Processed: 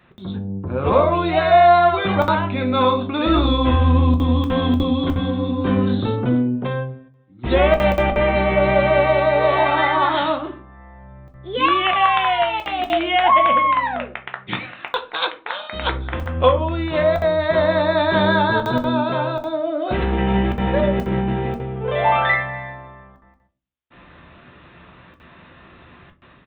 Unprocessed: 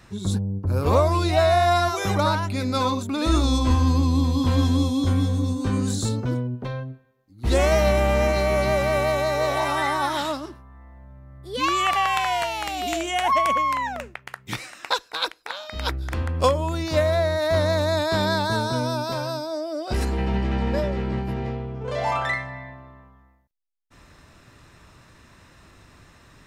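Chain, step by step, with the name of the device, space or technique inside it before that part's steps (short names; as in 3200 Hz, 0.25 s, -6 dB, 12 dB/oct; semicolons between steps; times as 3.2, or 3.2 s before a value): call with lost packets (HPF 150 Hz 6 dB/oct; downsampling 8000 Hz; AGC gain up to 9 dB; packet loss packets of 60 ms random); shoebox room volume 180 m³, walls furnished, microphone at 0.92 m; gain -3 dB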